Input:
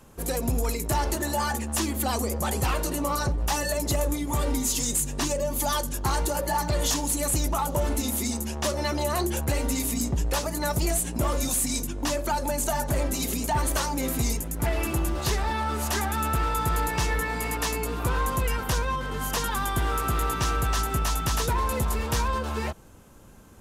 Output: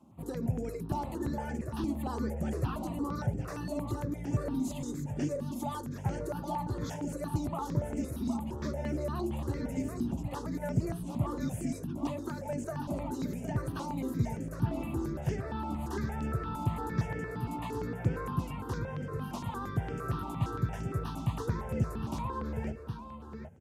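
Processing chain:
high-pass filter 110 Hz 24 dB per octave
spectral tilt −4 dB per octave
single-tap delay 764 ms −8 dB
step-sequenced phaser 8.7 Hz 460–3,900 Hz
level −8.5 dB

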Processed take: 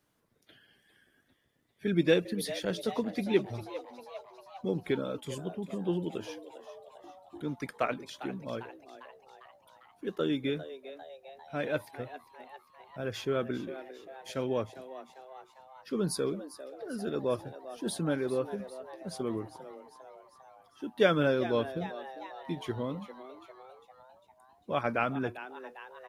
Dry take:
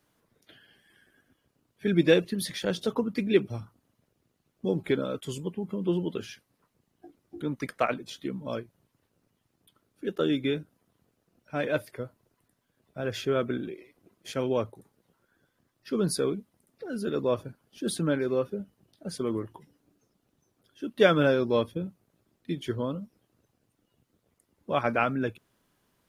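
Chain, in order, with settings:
echo with shifted repeats 400 ms, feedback 60%, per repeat +130 Hz, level −14 dB
level −4 dB

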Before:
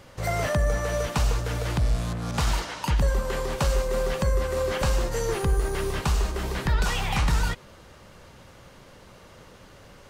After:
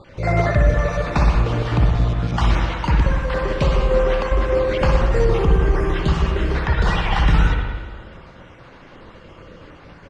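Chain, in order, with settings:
time-frequency cells dropped at random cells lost 32%
low-pass filter 3,500 Hz 12 dB per octave
parametric band 330 Hz +3 dB 0.59 octaves
on a send: single-tap delay 109 ms −16 dB
on the sum: spring reverb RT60 1.4 s, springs 54/60 ms, chirp 80 ms, DRR 1 dB
level +6 dB

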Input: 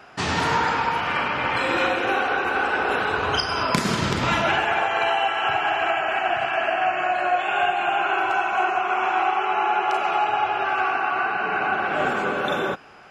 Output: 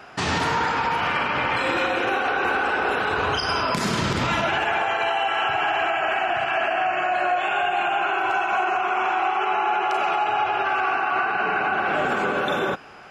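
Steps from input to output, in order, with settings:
brickwall limiter −17 dBFS, peak gain reduction 9.5 dB
level +3 dB

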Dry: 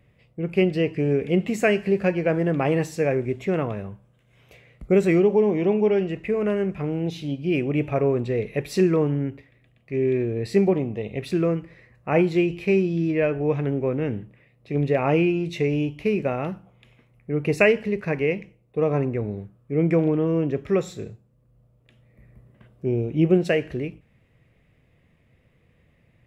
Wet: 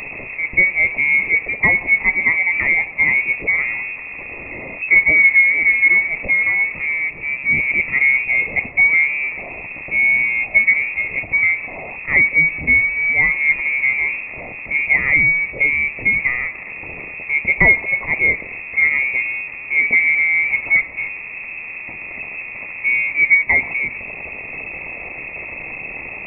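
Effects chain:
converter with a step at zero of −26.5 dBFS
phaser with its sweep stopped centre 430 Hz, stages 4
voice inversion scrambler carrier 2,600 Hz
level +6 dB

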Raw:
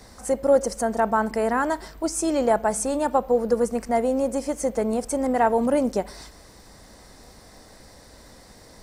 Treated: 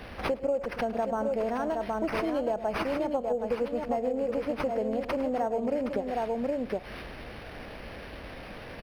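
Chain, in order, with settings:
drawn EQ curve 260 Hz 0 dB, 650 Hz +3 dB, 980 Hz −4 dB, 1,900 Hz −6 dB, 5,100 Hz +5 dB
on a send: multi-tap delay 105/767 ms −15/−6.5 dB
on the sum: downward compressor 6 to 1, threshold −31 dBFS, peak gain reduction 18.5 dB
linearly interpolated sample-rate reduction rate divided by 6×
level +4 dB

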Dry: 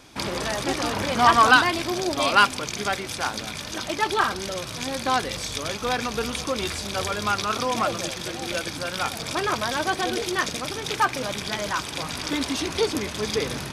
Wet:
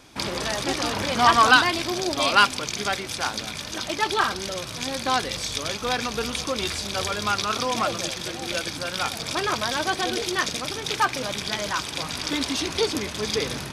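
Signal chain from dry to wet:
dynamic equaliser 4,400 Hz, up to +4 dB, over −35 dBFS, Q 0.78
level −1 dB

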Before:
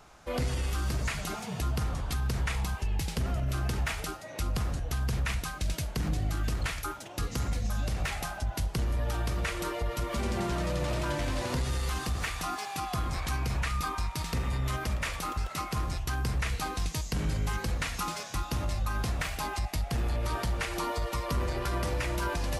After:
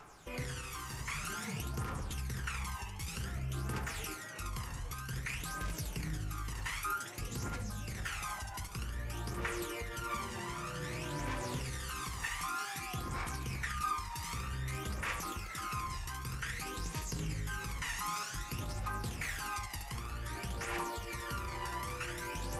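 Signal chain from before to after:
brickwall limiter −29.5 dBFS, peak gain reduction 7 dB
low-shelf EQ 150 Hz −11.5 dB
on a send: feedback echo with a high-pass in the loop 71 ms, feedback 42%, high-pass 490 Hz, level −4.5 dB
on the sum: flanger 0.17 Hz, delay 6.8 ms, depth 3.2 ms, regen −59%
graphic EQ with 15 bands 250 Hz −4 dB, 630 Hz −9 dB, 4,000 Hz −6 dB
phase shifter 0.53 Hz, delay 1.1 ms, feedback 55%
level +4 dB

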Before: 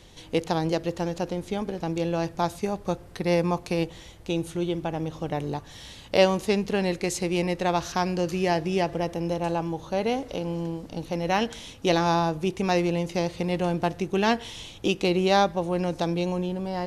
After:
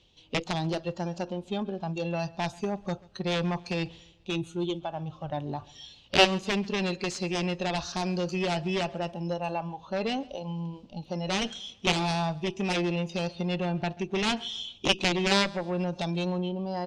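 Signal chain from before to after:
noise reduction from a noise print of the clip's start 15 dB
reversed playback
upward compression, threshold −37 dBFS
reversed playback
high shelf with overshoot 2,300 Hz +6 dB, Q 3
harmonic generator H 7 −10 dB, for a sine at −3.5 dBFS
high-frequency loss of the air 140 metres
on a send: repeating echo 136 ms, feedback 41%, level −23.5 dB
on the sum: level −1.5 dB

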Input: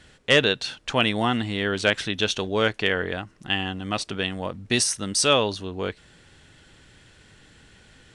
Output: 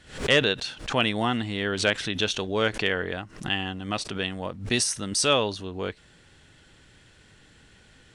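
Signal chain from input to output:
background raised ahead of every attack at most 130 dB per second
level −2.5 dB

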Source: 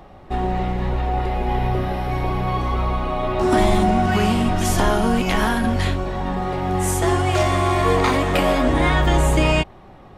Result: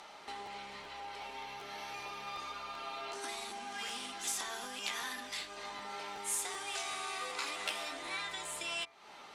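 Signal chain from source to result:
downward compressor 8 to 1, threshold −32 dBFS, peak gain reduction 19 dB
meter weighting curve ITU-R 468
wrong playback speed 44.1 kHz file played as 48 kHz
parametric band 95 Hz −12.5 dB 0.82 octaves
hum removal 74.57 Hz, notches 32
regular buffer underruns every 0.38 s, samples 512, repeat, from 0:00.45
level −4 dB

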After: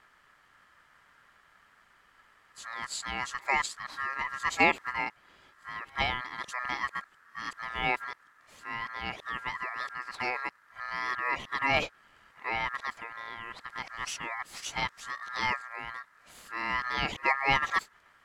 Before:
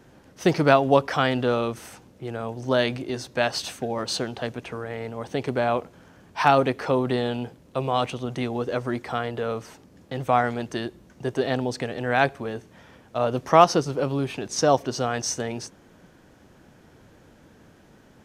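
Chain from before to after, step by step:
played backwards from end to start
ring modulation 1,500 Hz
level −6 dB

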